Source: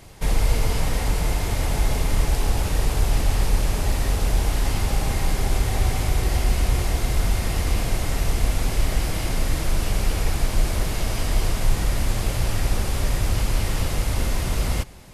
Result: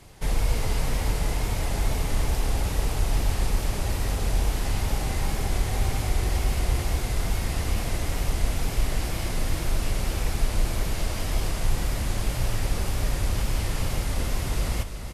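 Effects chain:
tape wow and flutter 62 cents
single-tap delay 346 ms −8.5 dB
level −4 dB

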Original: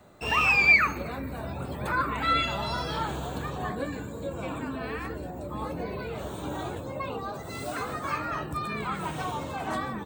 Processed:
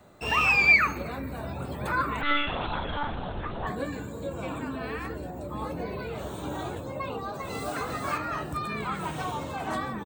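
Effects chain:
0:02.21–0:03.67: one-pitch LPC vocoder at 8 kHz 290 Hz
0:06.99–0:07.77: delay throw 400 ms, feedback 30%, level −4 dB

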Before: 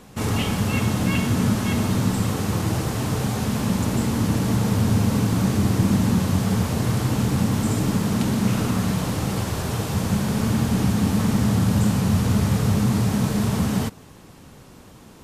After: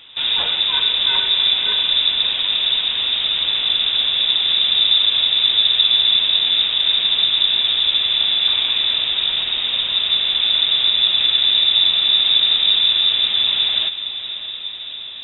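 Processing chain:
stylus tracing distortion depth 0.24 ms
voice inversion scrambler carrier 3,700 Hz
feedback delay with all-pass diffusion 620 ms, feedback 69%, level −12.5 dB
level +3 dB

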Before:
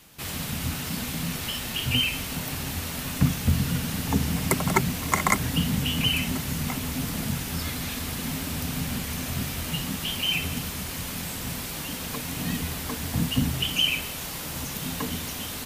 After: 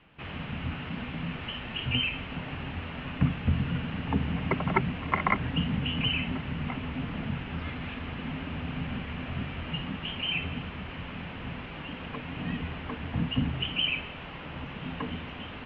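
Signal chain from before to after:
elliptic low-pass filter 2,900 Hz, stop band 80 dB
level −2.5 dB

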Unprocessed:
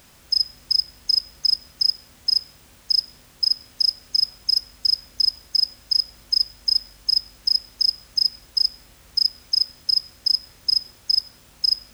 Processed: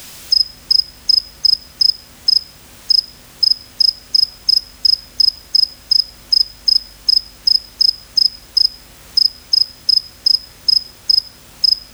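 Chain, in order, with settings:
multiband upward and downward compressor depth 40%
level +7 dB

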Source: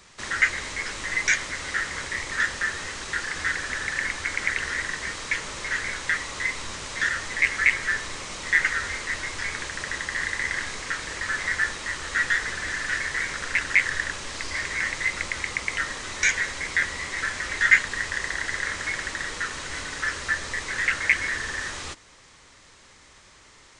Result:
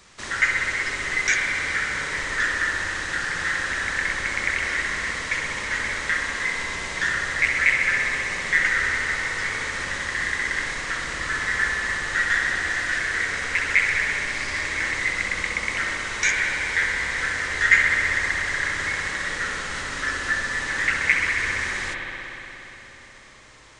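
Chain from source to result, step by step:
spring reverb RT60 3.7 s, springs 59 ms, chirp 55 ms, DRR −0.5 dB

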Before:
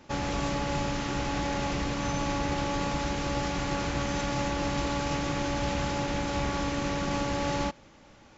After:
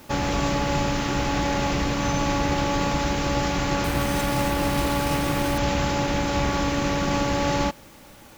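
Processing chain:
0:03.84–0:05.58: bad sample-rate conversion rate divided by 3×, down none, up hold
in parallel at −10.5 dB: bit-depth reduction 8 bits, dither triangular
on the sum: level +4 dB

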